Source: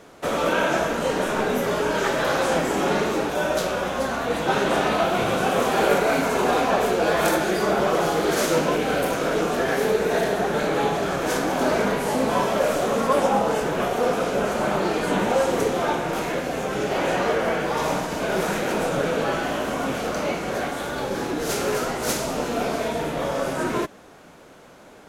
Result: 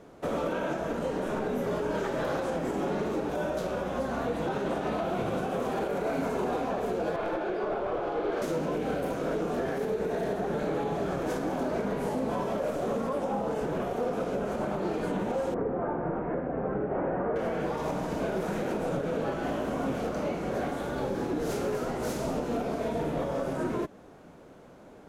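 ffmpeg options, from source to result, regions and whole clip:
-filter_complex "[0:a]asettb=1/sr,asplit=3[a][b][c];[a]atrim=end=7.164[d];[b]atrim=start=7.16:end=8.42,asetpts=PTS-STARTPTS,afade=t=in:d=0.004:c=qsin,afade=t=out:st=1.256:d=0.004:c=qsin,acrossover=split=280 3600:gain=0.0708 1 0.0708[e][f][g];[e][f][g]amix=inputs=3:normalize=0,bandreject=f=1.9k:w=8.7,aeval=exprs='clip(val(0),-1,0.0944)':c=same[h];[c]atrim=start=8.416[i];[d][h]acrossfade=d=0.004:c1=hsin:c2=qsin[j];[j][i]acrossfade=d=0.004:c1=qsin:c2=hsin,asettb=1/sr,asplit=3[k][l][m];[k]atrim=end=15.544[n];[l]atrim=start=15.54:end=17.36,asetpts=PTS-STARTPTS,afade=t=in:d=0.004:c=qsin,afade=t=out:st=1.816:d=0.004:c=qsin,asoftclip=type=hard:threshold=-14dB,lowpass=f=1.7k:w=0.5412,lowpass=f=1.7k:w=1.3066[o];[m]atrim=start=17.356[p];[n][o]acrossfade=d=0.004:c1=hsin:c2=qsin[q];[q][p]acrossfade=d=0.004:c1=qsin:c2=hsin,tiltshelf=f=970:g=6,alimiter=limit=-15dB:level=0:latency=1:release=161,volume=-6.5dB"

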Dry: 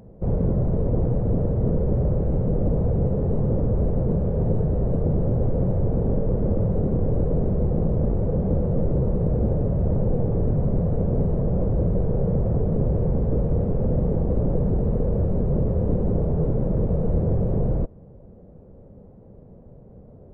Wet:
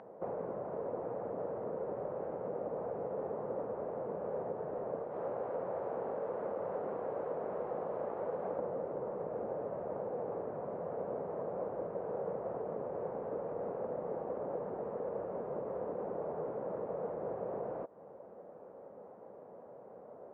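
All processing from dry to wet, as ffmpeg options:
-filter_complex "[0:a]asettb=1/sr,asplit=3[a][b][c];[a]atrim=end=5.034[d];[b]atrim=start=5.03:end=8.59,asetpts=PTS-STARTPTS,afade=t=in:d=0.004:c=qsin,afade=t=out:st=3.556:d=0.004:c=qsin,bass=f=250:g=2,treble=f=4k:g=6,acrossover=split=340|950[e][f][g];[e]acompressor=threshold=-32dB:ratio=4[h];[f]acompressor=threshold=-37dB:ratio=4[i];[g]acompressor=threshold=-51dB:ratio=4[j];[h][i][j]amix=inputs=3:normalize=0[k];[c]atrim=start=8.586[l];[d][k]acrossfade=d=0.004:c1=hsin:c2=qsin[m];[m][l]acrossfade=d=0.004:c1=qsin:c2=hsin,lowpass=1.4k,acompressor=threshold=-28dB:ratio=6,highpass=900,volume=11.5dB"

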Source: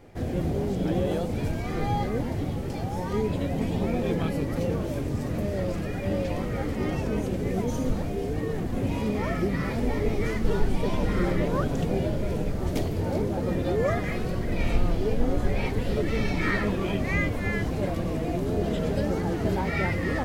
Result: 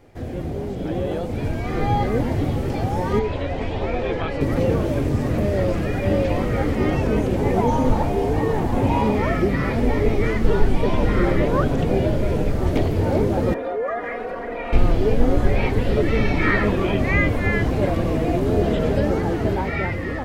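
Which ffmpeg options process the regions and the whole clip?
-filter_complex "[0:a]asettb=1/sr,asplit=3[a][b][c];[a]atrim=end=3.194[d];[b]atrim=start=3.19:end=4.41,asetpts=PTS-STARTPTS,afade=t=in:d=0.004:c=qsin,afade=t=out:st=1.216:d=0.004:c=qsin,lowpass=3.8k,equalizer=f=190:t=o:w=1.7:g=-12.5[e];[c]atrim=start=4.406[f];[d][e]acrossfade=d=0.004:c1=hsin:c2=qsin[g];[g][f]acrossfade=d=0.004:c1=qsin:c2=hsin,asettb=1/sr,asplit=3[h][i][j];[h]atrim=end=7.364[k];[i]atrim=start=7.36:end=9.15,asetpts=PTS-STARTPTS,afade=t=in:d=0.004:c=qsin,afade=t=out:st=1.786:d=0.004:c=qsin,equalizer=f=870:t=o:w=0.45:g=13.5,bandreject=f=760:w=24[l];[j]atrim=start=9.146[m];[k][l]acrossfade=d=0.004:c1=hsin:c2=qsin[n];[n][m]acrossfade=d=0.004:c1=qsin:c2=hsin,asettb=1/sr,asplit=3[o][p][q];[o]atrim=end=13.544[r];[p]atrim=start=13.54:end=14.73,asetpts=PTS-STARTPTS,afade=t=in:d=0.004:c=qsin,afade=t=out:st=1.186:d=0.004:c=qsin,acrossover=split=370 2200:gain=0.0708 1 0.0708[s][t][u];[s][t][u]amix=inputs=3:normalize=0,aecho=1:1:4.2:0.7,atrim=end_sample=52479,acompressor=threshold=-32dB:ratio=2.5:attack=3.2:release=140:knee=1:detection=peak[v];[q]atrim=start=14.726[w];[r][v]acrossfade=d=0.004:c1=hsin:c2=qsin[x];[x][w]acrossfade=d=0.004:c1=qsin:c2=hsin,acrossover=split=3500[y][z];[z]acompressor=threshold=-55dB:ratio=4:attack=1:release=60[aa];[y][aa]amix=inputs=2:normalize=0,equalizer=f=180:w=4.2:g=-5.5,dynaudnorm=f=640:g=5:m=8.5dB"

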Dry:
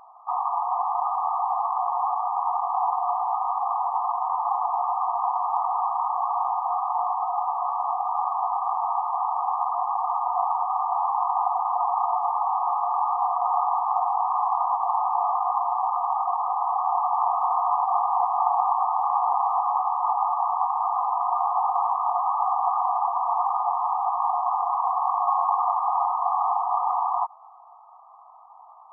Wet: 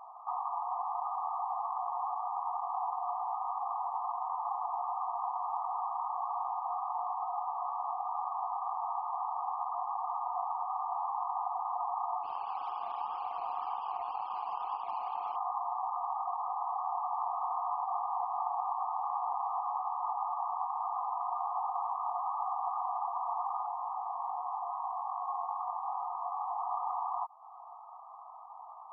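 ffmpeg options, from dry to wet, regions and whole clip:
-filter_complex "[0:a]asettb=1/sr,asplit=3[a][b][c];[a]atrim=end=12.234[d];[b]atrim=start=12.23:end=15.36,asetpts=PTS-STARTPTS,afade=t=in:d=0.004:c=qsin,afade=t=out:st=3.126:d=0.004:c=qsin,flanger=delay=18.5:depth=6.3:speed=1.9,aeval=exprs='sgn(val(0))*max(abs(val(0))-0.01,0)':c=same[e];[c]atrim=start=15.356[f];[d][e]acrossfade=d=0.004:c1=hsin:c2=qsin[g];[g][f]acrossfade=d=0.004:c1=qsin:c2=hsin,asettb=1/sr,asplit=3[h][i][j];[h]atrim=end=23.664[k];[i]atrim=start=23.66:end=26.58,asetpts=PTS-STARTPTS,afade=t=in:d=0.004:c=qsin,afade=t=out:st=2.916:d=0.004:c=qsin,lowpass=1.2k,flanger=delay=19:depth=2.4:speed=2.5[l];[j]atrim=start=26.576[m];[k][l]acrossfade=d=0.004:c1=hsin:c2=qsin[n];[n][m]acrossfade=d=0.004:c1=qsin:c2=hsin,acompressor=threshold=-41dB:ratio=2,afftfilt=real='re*gte(hypot(re,im),0.00251)':imag='im*gte(hypot(re,im),0.00251)':win_size=1024:overlap=0.75"

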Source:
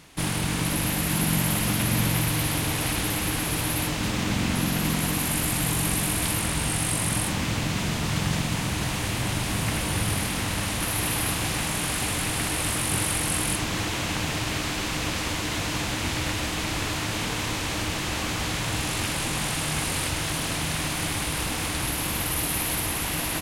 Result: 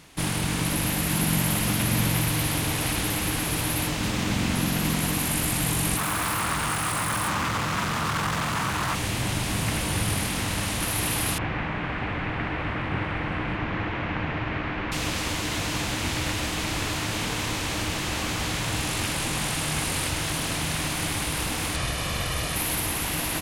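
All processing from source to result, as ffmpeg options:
-filter_complex "[0:a]asettb=1/sr,asplit=3[a][b][c];[a]atrim=end=5.974[d];[b]atrim=start=5.97:end=8.95,asetpts=PTS-STARTPTS,afade=t=in:d=0.004:c=qsin,afade=t=out:st=2.976:d=0.004:c=qsin,highpass=51,asoftclip=type=hard:threshold=-27dB,equalizer=f=1.2k:t=o:w=1.1:g=13.5[e];[c]atrim=start=8.946[f];[d][e]acrossfade=d=0.004:c1=hsin:c2=qsin[g];[g][f]acrossfade=d=0.004:c1=qsin:c2=hsin,asettb=1/sr,asplit=3[h][i][j];[h]atrim=end=11.384[k];[i]atrim=start=11.38:end=14.92,asetpts=PTS-STARTPTS,afade=t=in:d=0.004:c=qsin,afade=t=out:st=3.536:d=0.004:c=qsin,lowpass=f=2.1k:w=0.5412,lowpass=f=2.1k:w=1.3066,aemphasis=mode=production:type=75kf[l];[j]atrim=start=14.916[m];[k][l]acrossfade=d=0.004:c1=hsin:c2=qsin[n];[n][m]acrossfade=d=0.004:c1=qsin:c2=hsin,asettb=1/sr,asplit=3[o][p][q];[o]atrim=end=21.764[r];[p]atrim=start=21.76:end=22.56,asetpts=PTS-STARTPTS,afade=t=in:d=0.004:c=qsin,afade=t=out:st=0.796:d=0.004:c=qsin,lowpass=7.5k,aecho=1:1:1.7:0.48,atrim=end_sample=35280[s];[q]atrim=start=22.556[t];[r][s]acrossfade=d=0.004:c1=hsin:c2=qsin[u];[u][t]acrossfade=d=0.004:c1=qsin:c2=hsin"

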